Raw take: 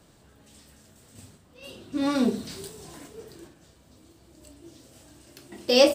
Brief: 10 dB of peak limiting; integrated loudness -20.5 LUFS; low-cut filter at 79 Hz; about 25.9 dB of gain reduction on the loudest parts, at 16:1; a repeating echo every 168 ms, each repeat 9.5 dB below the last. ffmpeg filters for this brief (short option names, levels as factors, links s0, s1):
-af "highpass=79,acompressor=threshold=0.0126:ratio=16,alimiter=level_in=4.47:limit=0.0631:level=0:latency=1,volume=0.224,aecho=1:1:168|336|504|672:0.335|0.111|0.0365|0.012,volume=25.1"